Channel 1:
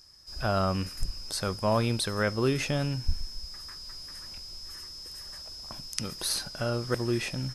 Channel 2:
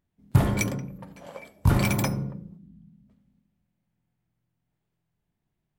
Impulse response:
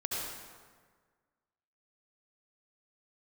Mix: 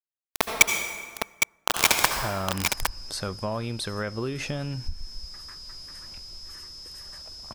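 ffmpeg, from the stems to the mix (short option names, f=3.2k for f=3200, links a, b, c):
-filter_complex "[0:a]highshelf=f=11k:g=-7.5,acompressor=threshold=-28dB:ratio=6,adelay=1800,volume=-7.5dB[a];[1:a]highpass=f=210:p=1,acrossover=split=490 5400:gain=0.0631 1 0.251[b][c][d];[b][c][d]amix=inputs=3:normalize=0,acrusher=bits=3:mix=0:aa=0.000001,volume=0dB,asplit=3[e][f][g];[f]volume=-4dB[h];[g]volume=-3dB[i];[2:a]atrim=start_sample=2205[j];[h][j]afir=irnorm=-1:irlink=0[k];[i]aecho=0:1:810:1[l];[a][e][k][l]amix=inputs=4:normalize=0,dynaudnorm=f=130:g=5:m=9dB"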